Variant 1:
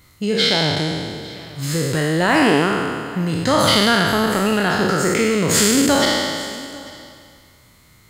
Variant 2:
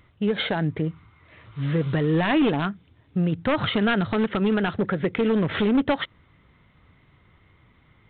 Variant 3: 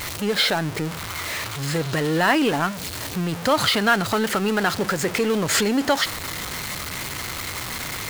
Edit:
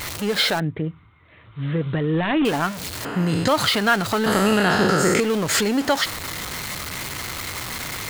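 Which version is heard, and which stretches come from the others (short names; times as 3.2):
3
0.6–2.45 from 2
3.05–3.48 from 1
4.26–5.2 from 1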